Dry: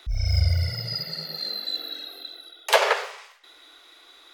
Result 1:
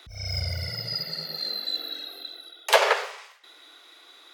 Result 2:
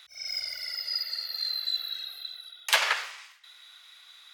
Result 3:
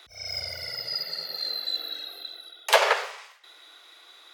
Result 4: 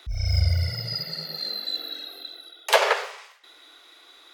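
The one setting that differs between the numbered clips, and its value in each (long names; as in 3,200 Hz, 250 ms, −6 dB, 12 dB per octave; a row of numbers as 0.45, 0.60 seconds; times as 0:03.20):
high-pass filter, corner frequency: 150, 1,500, 430, 43 Hertz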